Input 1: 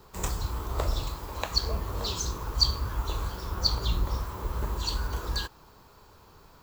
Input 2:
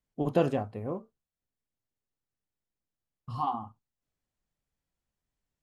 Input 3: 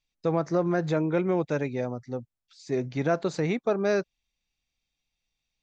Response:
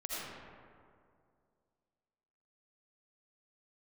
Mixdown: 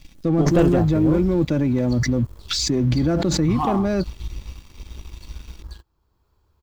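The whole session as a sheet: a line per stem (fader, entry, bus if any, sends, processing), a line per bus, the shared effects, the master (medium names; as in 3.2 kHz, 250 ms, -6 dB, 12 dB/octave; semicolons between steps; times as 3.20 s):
-14.0 dB, 0.35 s, no send, peaking EQ 67 Hz +6.5 dB 0.94 oct; auto duck -10 dB, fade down 1.50 s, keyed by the third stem
-0.5 dB, 0.20 s, no send, none
-14.0 dB, 0.00 s, no send, peaking EQ 160 Hz +12 dB 1.5 oct; comb 3.5 ms, depth 44%; level flattener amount 100%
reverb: none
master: waveshaping leveller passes 2; bass shelf 130 Hz +11 dB; small resonant body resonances 330/3300 Hz, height 7 dB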